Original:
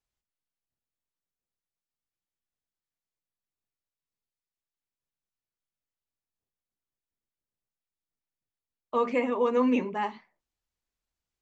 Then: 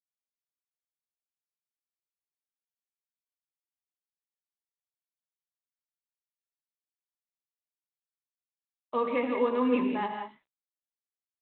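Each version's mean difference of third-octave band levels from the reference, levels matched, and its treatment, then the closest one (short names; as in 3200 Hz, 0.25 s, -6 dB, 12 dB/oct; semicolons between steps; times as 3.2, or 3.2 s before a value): 4.0 dB: HPF 56 Hz 24 dB/oct; non-linear reverb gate 0.21 s rising, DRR 4.5 dB; gain -2.5 dB; G.726 32 kbps 8000 Hz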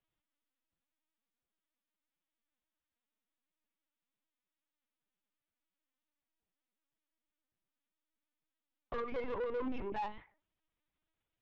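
6.5 dB: compressor 12:1, threshold -30 dBFS, peak gain reduction 11.5 dB; LPC vocoder at 8 kHz pitch kept; soft clip -33.5 dBFS, distortion -10 dB; gain +1 dB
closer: first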